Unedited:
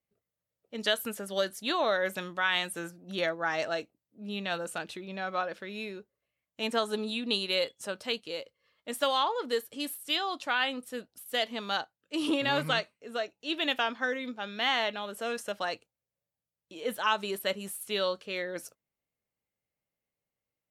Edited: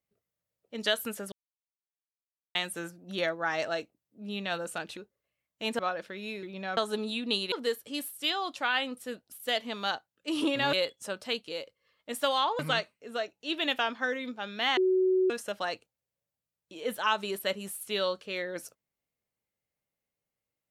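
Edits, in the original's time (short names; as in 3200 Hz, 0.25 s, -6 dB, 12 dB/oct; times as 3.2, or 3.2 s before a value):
1.32–2.55 mute
4.97–5.31 swap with 5.95–6.77
7.52–9.38 move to 12.59
14.77–15.3 bleep 373 Hz -21.5 dBFS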